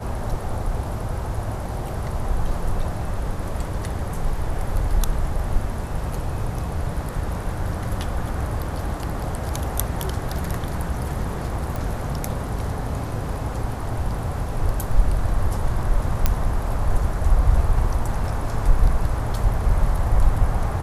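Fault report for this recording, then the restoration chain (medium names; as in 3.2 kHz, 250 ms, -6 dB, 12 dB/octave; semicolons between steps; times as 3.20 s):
11.76 s: pop
16.26 s: pop -4 dBFS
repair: de-click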